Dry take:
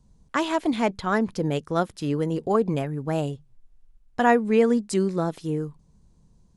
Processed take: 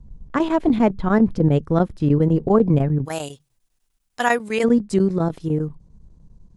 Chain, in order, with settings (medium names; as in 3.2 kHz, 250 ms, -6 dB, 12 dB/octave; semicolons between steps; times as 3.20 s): tilt EQ -3.5 dB/octave, from 3.04 s +3.5 dB/octave, from 4.63 s -2 dB/octave; square tremolo 10 Hz, depth 65%, duty 85%; trim +2 dB